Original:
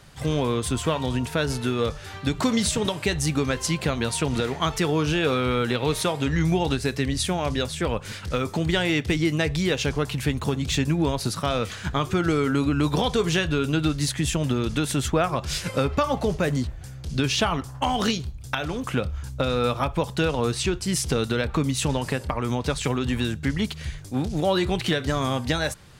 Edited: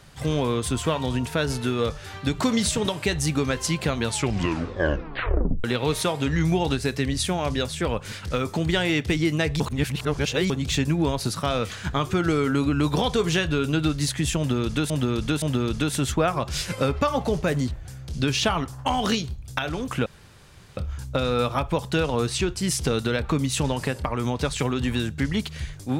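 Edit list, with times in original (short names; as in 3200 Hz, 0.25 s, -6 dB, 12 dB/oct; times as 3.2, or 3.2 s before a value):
4.04 tape stop 1.60 s
9.6–10.5 reverse
14.38–14.9 loop, 3 plays
19.02 insert room tone 0.71 s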